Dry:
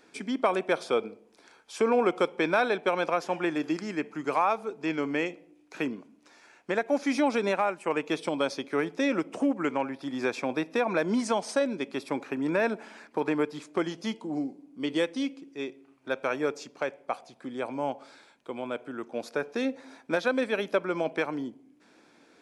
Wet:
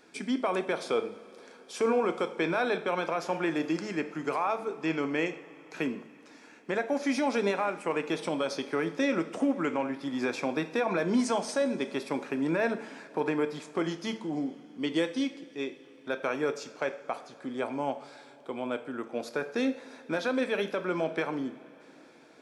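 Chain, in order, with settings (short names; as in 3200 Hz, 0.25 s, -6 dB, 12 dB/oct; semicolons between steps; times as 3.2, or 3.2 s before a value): limiter -19 dBFS, peak gain reduction 7 dB; two-slope reverb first 0.51 s, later 4.9 s, from -18 dB, DRR 8.5 dB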